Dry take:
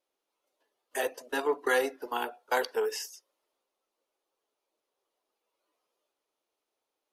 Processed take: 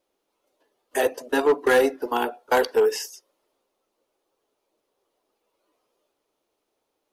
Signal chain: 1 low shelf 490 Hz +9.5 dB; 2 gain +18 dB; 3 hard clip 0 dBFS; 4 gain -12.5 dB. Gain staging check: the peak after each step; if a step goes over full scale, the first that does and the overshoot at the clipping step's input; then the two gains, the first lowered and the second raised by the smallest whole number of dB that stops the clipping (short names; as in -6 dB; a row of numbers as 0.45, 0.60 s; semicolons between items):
-12.0, +6.0, 0.0, -12.5 dBFS; step 2, 6.0 dB; step 2 +12 dB, step 4 -6.5 dB